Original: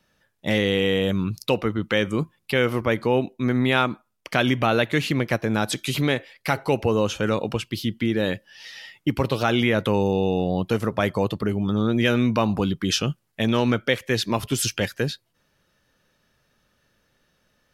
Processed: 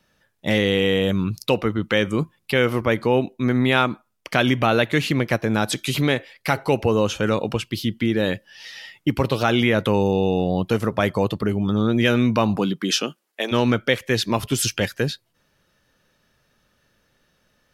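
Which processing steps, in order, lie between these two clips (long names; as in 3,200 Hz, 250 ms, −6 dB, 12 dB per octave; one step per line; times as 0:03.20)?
0:12.56–0:13.51: high-pass filter 140 Hz → 370 Hz 24 dB per octave
level +2 dB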